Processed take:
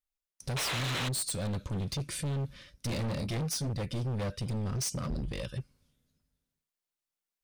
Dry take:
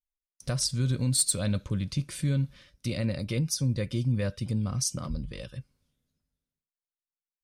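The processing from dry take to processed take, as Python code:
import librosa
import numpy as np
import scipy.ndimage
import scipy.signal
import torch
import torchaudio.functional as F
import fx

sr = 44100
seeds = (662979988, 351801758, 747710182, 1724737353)

y = fx.rider(x, sr, range_db=3, speed_s=0.5)
y = fx.spec_paint(y, sr, seeds[0], shape='noise', start_s=0.56, length_s=0.53, low_hz=290.0, high_hz=4200.0, level_db=-30.0)
y = fx.doubler(y, sr, ms=26.0, db=-6, at=(2.88, 3.7))
y = np.clip(10.0 ** (31.5 / 20.0) * y, -1.0, 1.0) / 10.0 ** (31.5 / 20.0)
y = F.gain(torch.from_numpy(y), 1.0).numpy()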